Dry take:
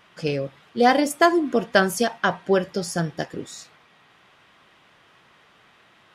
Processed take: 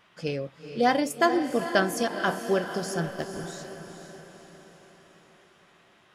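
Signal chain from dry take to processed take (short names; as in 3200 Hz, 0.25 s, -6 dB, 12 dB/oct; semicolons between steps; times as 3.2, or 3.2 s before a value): 3.04–3.46 backlash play -28.5 dBFS; diffused feedback echo 0.466 s, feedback 52%, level -9 dB; gain -5.5 dB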